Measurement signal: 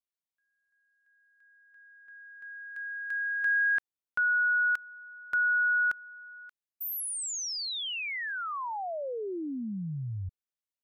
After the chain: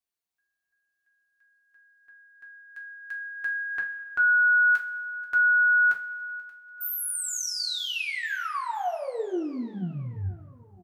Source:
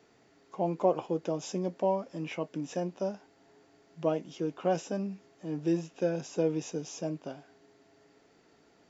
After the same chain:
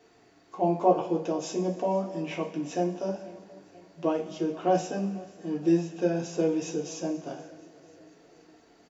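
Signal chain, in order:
on a send: repeating echo 483 ms, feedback 59%, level −22 dB
on the sum: coupled-rooms reverb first 0.27 s, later 1.7 s, from −17 dB, DRR −1.5 dB

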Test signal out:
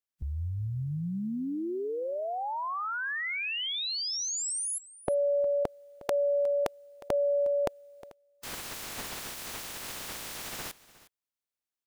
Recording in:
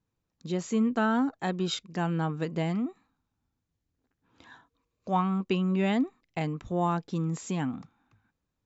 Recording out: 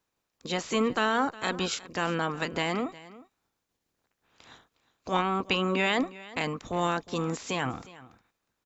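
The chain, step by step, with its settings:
ceiling on every frequency bin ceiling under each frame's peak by 20 dB
single-tap delay 360 ms −19 dB

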